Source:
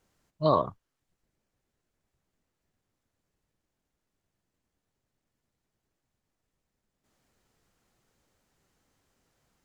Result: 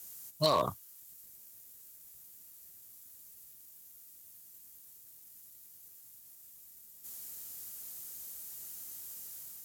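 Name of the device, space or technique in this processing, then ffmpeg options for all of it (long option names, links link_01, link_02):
FM broadcast chain: -filter_complex "[0:a]highpass=45,dynaudnorm=framelen=200:gausssize=5:maxgain=3dB,acrossover=split=380|1100[link_01][link_02][link_03];[link_01]acompressor=threshold=-37dB:ratio=4[link_04];[link_02]acompressor=threshold=-26dB:ratio=4[link_05];[link_03]acompressor=threshold=-36dB:ratio=4[link_06];[link_04][link_05][link_06]amix=inputs=3:normalize=0,aemphasis=mode=production:type=75fm,alimiter=limit=-22dB:level=0:latency=1:release=16,asoftclip=type=hard:threshold=-24.5dB,lowpass=frequency=15000:width=0.5412,lowpass=frequency=15000:width=1.3066,aemphasis=mode=production:type=75fm,volume=4.5dB"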